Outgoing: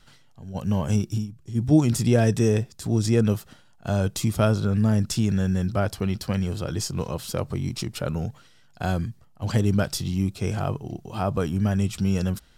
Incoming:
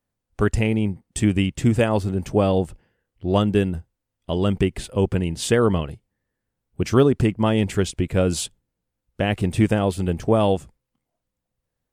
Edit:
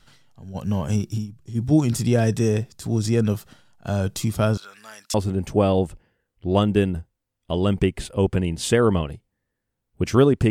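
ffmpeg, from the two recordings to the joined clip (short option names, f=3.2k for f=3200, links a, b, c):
-filter_complex "[0:a]asettb=1/sr,asplit=3[a][b][c];[a]atrim=end=4.574[d];[b]atrim=start=4.57:end=5.14,asetpts=PTS-STARTPTS,afade=t=in:d=0.004:c=qsin,afade=t=out:st=0.566:d=0.004:c=qsin,highpass=1.5k[e];[c]atrim=start=5.136[f];[d][e]acrossfade=d=0.004:c1=hsin:c2=qsin[g];[g][f]acrossfade=d=0.004:c1=qsin:c2=hsin,apad=whole_dur=10.5,atrim=end=10.5,atrim=end=5.142[h];[1:a]atrim=start=1.928:end=7.29[i];[h][i]acrossfade=d=0.004:c1=hsin:c2=hsin"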